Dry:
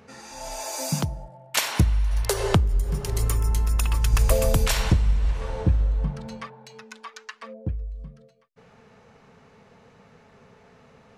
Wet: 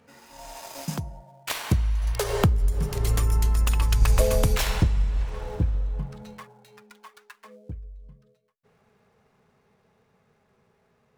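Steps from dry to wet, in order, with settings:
gap after every zero crossing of 0.063 ms
source passing by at 0:03.42, 18 m/s, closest 27 metres
level +1 dB

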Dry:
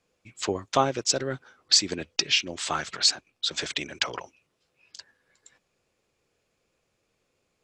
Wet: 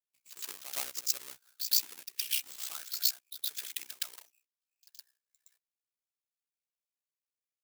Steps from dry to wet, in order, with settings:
each half-wave held at its own peak
noise gate −57 dBFS, range −13 dB
first difference
ring modulation 31 Hz
backwards echo 117 ms −10 dB
level −6.5 dB

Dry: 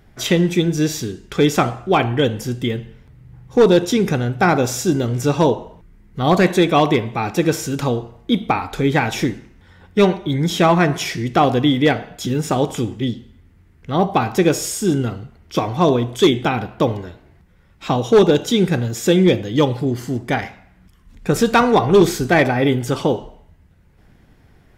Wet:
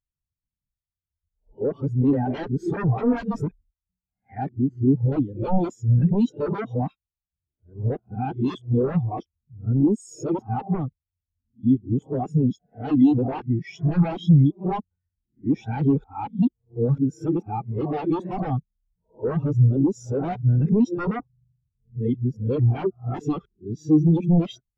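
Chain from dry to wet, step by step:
played backwards from end to start
sine wavefolder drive 9 dB, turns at −5 dBFS
every bin expanded away from the loudest bin 2.5 to 1
level −3.5 dB

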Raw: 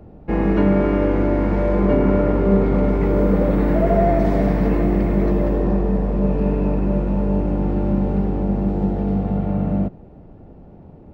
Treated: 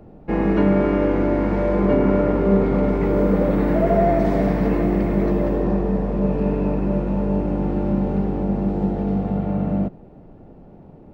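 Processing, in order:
parametric band 67 Hz −7.5 dB 1.2 octaves

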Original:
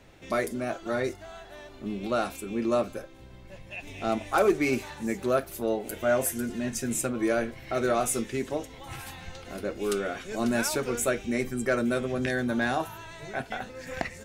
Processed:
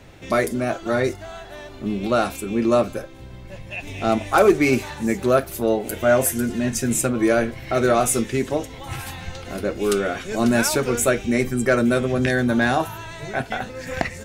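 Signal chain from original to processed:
parametric band 100 Hz +4 dB 1.4 octaves
level +7.5 dB

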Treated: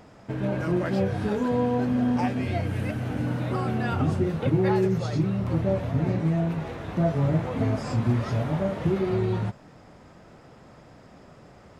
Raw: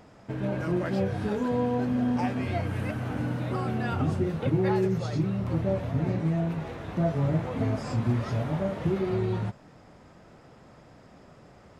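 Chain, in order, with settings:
0:02.28–0:03.27: parametric band 1,100 Hz −5.5 dB 0.96 octaves
level +2.5 dB

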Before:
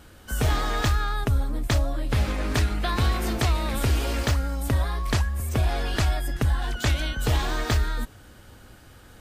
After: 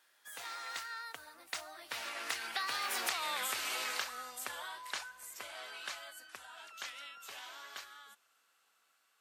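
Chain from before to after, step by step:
source passing by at 0:03.21, 34 m/s, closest 8.2 metres
high-pass filter 1,100 Hz 12 dB per octave
downward compressor 8 to 1, threshold −42 dBFS, peak gain reduction 14.5 dB
level +9 dB

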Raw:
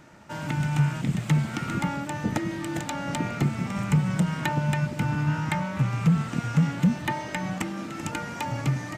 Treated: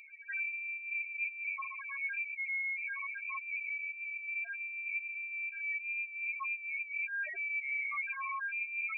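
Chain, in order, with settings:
high-pass filter 92 Hz 24 dB per octave
compressor whose output falls as the input rises −35 dBFS, ratio −1
spectral peaks only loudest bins 2
soft clipping −24 dBFS, distortion −34 dB
voice inversion scrambler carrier 2,500 Hz

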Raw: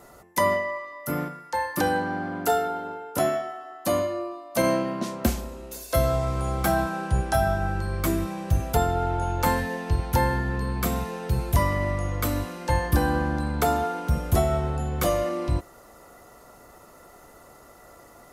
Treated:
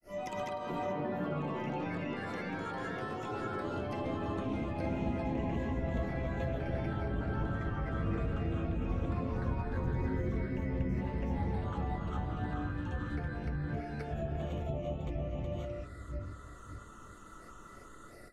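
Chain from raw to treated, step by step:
time-frequency box erased 0:09.16–0:10.95, 520–5,100 Hz
comb and all-pass reverb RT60 1.5 s, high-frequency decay 0.45×, pre-delay 45 ms, DRR −6.5 dB
downward compressor 10 to 1, threshold −26 dBFS, peak gain reduction 16.5 dB
all-pass phaser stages 8, 0.22 Hz, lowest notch 640–1,600 Hz
granular cloud 198 ms, grains 20 per second, spray 650 ms, pitch spread up and down by 0 semitones
delay with pitch and tempo change per echo 112 ms, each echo +4 semitones, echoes 3
treble cut that deepens with the level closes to 2,600 Hz, closed at −29.5 dBFS
level −2 dB

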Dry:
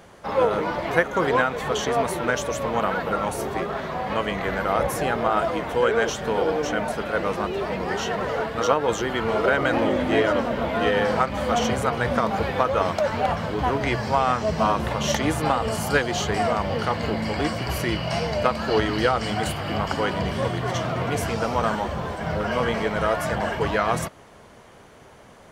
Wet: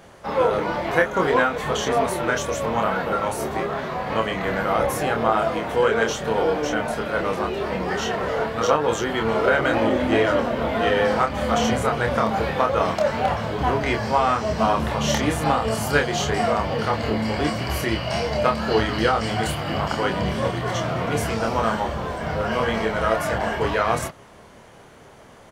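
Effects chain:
double-tracking delay 27 ms −4 dB

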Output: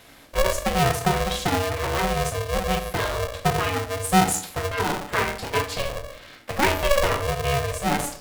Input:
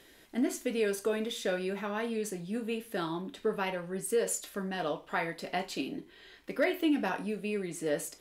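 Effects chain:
rectangular room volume 480 cubic metres, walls furnished, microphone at 1.6 metres
ring modulator with a square carrier 280 Hz
level +6.5 dB

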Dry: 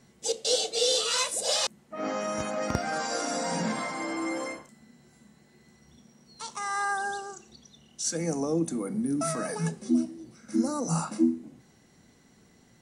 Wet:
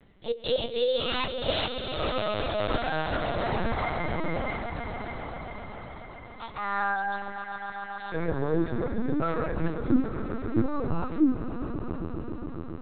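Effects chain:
echo that builds up and dies away 136 ms, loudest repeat 5, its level −13 dB
linear-prediction vocoder at 8 kHz pitch kept
level +1.5 dB

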